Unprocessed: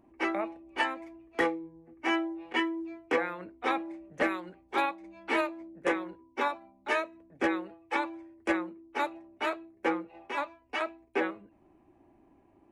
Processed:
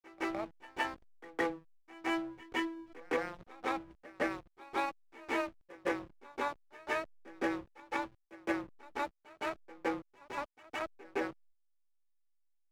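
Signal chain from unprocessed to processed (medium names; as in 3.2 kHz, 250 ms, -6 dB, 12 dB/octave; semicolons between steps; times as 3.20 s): hysteresis with a dead band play -32 dBFS; gate -56 dBFS, range -10 dB; pre-echo 164 ms -20 dB; trim -5 dB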